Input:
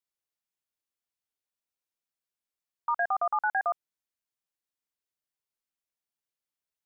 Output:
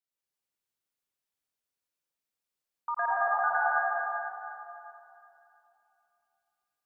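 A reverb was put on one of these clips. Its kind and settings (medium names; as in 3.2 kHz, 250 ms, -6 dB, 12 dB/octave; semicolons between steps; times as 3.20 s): plate-style reverb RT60 2.8 s, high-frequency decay 0.9×, pre-delay 80 ms, DRR -6.5 dB; trim -5 dB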